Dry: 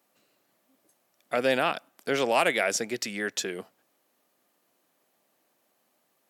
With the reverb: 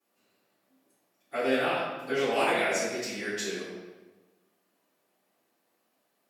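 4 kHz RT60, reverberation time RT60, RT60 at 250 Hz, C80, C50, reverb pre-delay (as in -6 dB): 0.90 s, 1.2 s, 1.4 s, 1.5 dB, -1.0 dB, 3 ms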